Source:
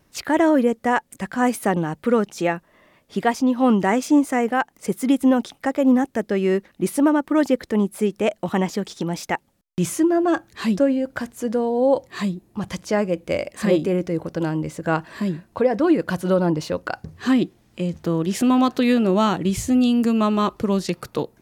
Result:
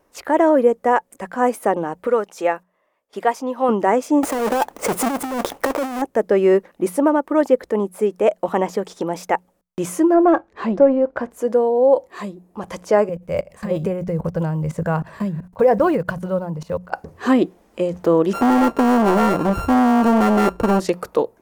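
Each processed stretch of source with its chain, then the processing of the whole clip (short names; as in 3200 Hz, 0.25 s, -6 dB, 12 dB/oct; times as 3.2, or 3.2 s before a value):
2.07–3.69 gate -47 dBFS, range -15 dB + low shelf 430 Hz -10 dB
4.23–6.02 half-waves squared off + negative-ratio compressor -23 dBFS + mismatched tape noise reduction decoder only
10.14–11.31 sample leveller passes 1 + tape spacing loss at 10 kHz 23 dB
13.09–16.92 block floating point 7-bit + resonant low shelf 210 Hz +11 dB, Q 3 + level quantiser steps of 24 dB
18.33–20.8 sample sorter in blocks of 32 samples + tilt -2.5 dB/oct + hard clip -15.5 dBFS
whole clip: graphic EQ 125/500/1000/4000 Hz -9/+9/+6/-5 dB; AGC; notches 60/120/180 Hz; gain -3.5 dB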